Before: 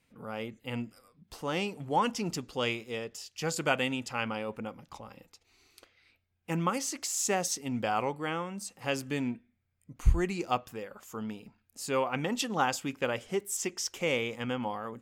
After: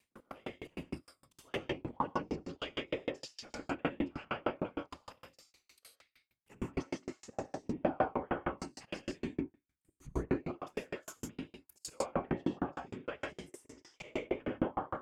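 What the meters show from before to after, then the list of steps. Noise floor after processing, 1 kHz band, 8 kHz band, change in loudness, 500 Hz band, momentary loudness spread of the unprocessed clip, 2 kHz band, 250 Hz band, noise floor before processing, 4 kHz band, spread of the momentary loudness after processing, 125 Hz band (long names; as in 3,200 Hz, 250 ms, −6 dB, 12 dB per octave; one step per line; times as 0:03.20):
−85 dBFS, −7.5 dB, −18.0 dB, −7.0 dB, −5.5 dB, 13 LU, −9.5 dB, −4.0 dB, −74 dBFS, −11.0 dB, 13 LU, −8.0 dB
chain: volume swells 208 ms
leveller curve on the samples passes 1
random phases in short frames
high-shelf EQ 4,400 Hz +6.5 dB
treble cut that deepens with the level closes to 1,100 Hz, closed at −27 dBFS
low-shelf EQ 350 Hz −5.5 dB
reverb whose tail is shaped and stops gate 180 ms rising, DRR −1 dB
tremolo with a ramp in dB decaying 6.5 Hz, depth 39 dB
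level +3 dB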